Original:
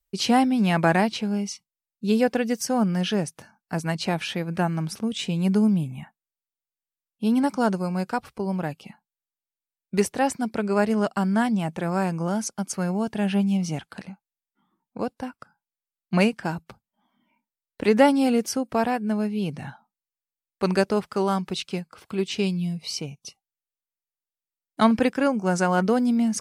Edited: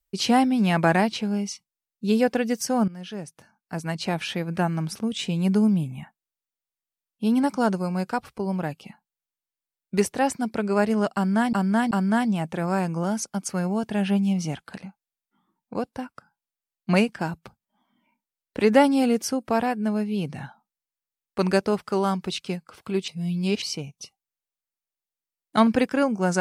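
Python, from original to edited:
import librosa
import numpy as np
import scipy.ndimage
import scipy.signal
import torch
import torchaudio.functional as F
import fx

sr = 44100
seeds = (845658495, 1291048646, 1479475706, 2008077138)

y = fx.edit(x, sr, fx.fade_in_from(start_s=2.88, length_s=1.44, floor_db=-17.0),
    fx.repeat(start_s=11.15, length_s=0.38, count=3),
    fx.reverse_span(start_s=22.32, length_s=0.54), tone=tone)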